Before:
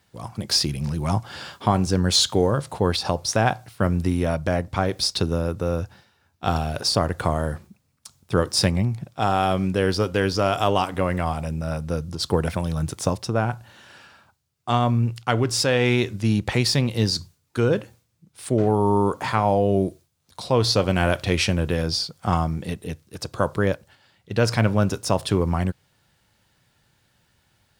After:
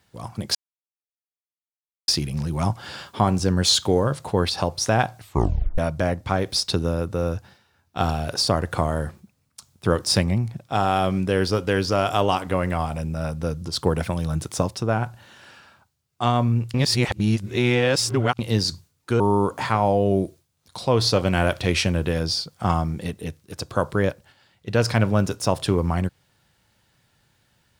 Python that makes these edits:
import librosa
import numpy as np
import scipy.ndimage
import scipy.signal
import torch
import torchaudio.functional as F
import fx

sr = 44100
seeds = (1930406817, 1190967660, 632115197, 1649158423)

y = fx.edit(x, sr, fx.insert_silence(at_s=0.55, length_s=1.53),
    fx.tape_stop(start_s=3.67, length_s=0.58),
    fx.reverse_span(start_s=15.21, length_s=1.65),
    fx.cut(start_s=17.67, length_s=1.16), tone=tone)